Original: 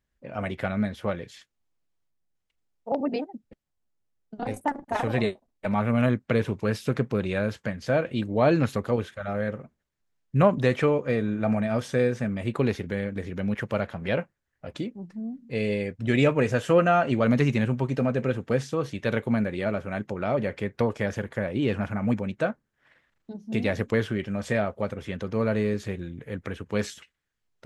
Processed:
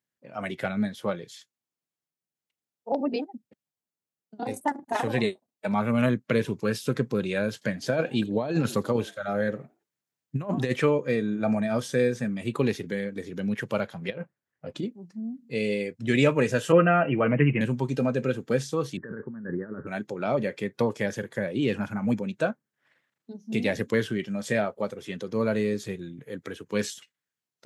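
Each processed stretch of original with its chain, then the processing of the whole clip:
0:07.53–0:10.73: echo with shifted repeats 84 ms, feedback 34%, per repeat +100 Hz, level −22 dB + compressor whose output falls as the input rises −23 dBFS, ratio −0.5
0:14.10–0:14.86: high-shelf EQ 3,100 Hz −9.5 dB + compressor whose output falls as the input rises −30 dBFS, ratio −0.5
0:16.72–0:17.61: Butterworth low-pass 3,000 Hz 96 dB per octave + comb filter 6.3 ms, depth 49%
0:18.97–0:19.87: Butterworth low-pass 1,800 Hz 96 dB per octave + compressor whose output falls as the input rises −32 dBFS + parametric band 690 Hz −14.5 dB 0.45 octaves
whole clip: noise reduction from a noise print of the clip's start 7 dB; high-pass filter 120 Hz 24 dB per octave; high-shelf EQ 4,900 Hz +6.5 dB

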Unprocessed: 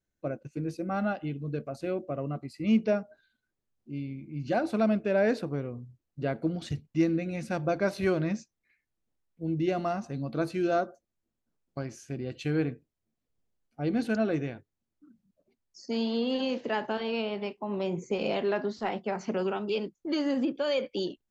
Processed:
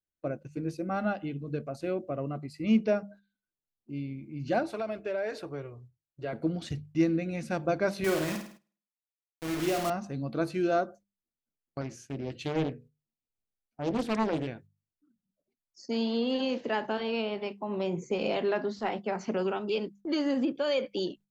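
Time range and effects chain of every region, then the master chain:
0:04.63–0:06.33: parametric band 190 Hz −13.5 dB 1 octave + downward compressor 4 to 1, threshold −28 dBFS + notch comb filter 250 Hz
0:08.04–0:09.90: high-pass filter 270 Hz 6 dB per octave + bit-depth reduction 6 bits, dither none + flutter between parallel walls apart 8.9 metres, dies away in 0.53 s
0:11.81–0:14.47: mains-hum notches 60/120/180/240/300/360/420/480/540 Hz + highs frequency-modulated by the lows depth 0.69 ms
whole clip: noise gate −51 dBFS, range −13 dB; mains-hum notches 50/100/150/200 Hz

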